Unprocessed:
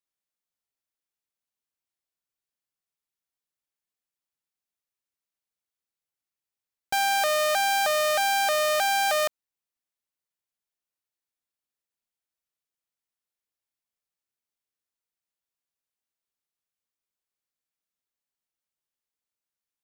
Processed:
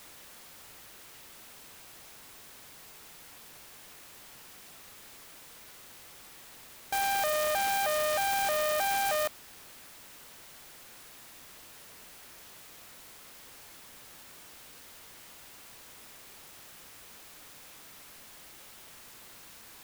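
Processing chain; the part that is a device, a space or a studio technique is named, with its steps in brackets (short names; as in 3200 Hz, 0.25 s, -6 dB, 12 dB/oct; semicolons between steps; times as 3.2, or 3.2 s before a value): early CD player with a faulty converter (zero-crossing step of -35 dBFS; clock jitter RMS 0.049 ms); gain -6 dB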